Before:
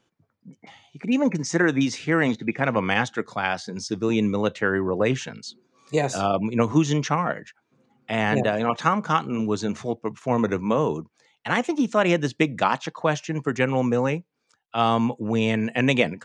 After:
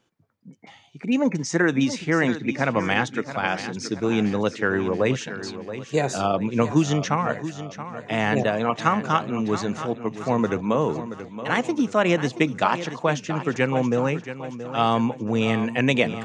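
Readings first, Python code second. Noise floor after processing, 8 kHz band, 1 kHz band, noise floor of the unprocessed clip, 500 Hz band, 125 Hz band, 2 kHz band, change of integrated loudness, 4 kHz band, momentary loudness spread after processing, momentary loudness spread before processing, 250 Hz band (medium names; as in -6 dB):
-48 dBFS, +0.5 dB, +0.5 dB, -74 dBFS, +0.5 dB, +0.5 dB, +0.5 dB, 0.0 dB, +0.5 dB, 9 LU, 8 LU, +0.5 dB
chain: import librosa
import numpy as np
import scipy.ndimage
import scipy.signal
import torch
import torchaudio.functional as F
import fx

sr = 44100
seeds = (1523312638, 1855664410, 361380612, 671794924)

y = fx.echo_feedback(x, sr, ms=677, feedback_pct=47, wet_db=-12.0)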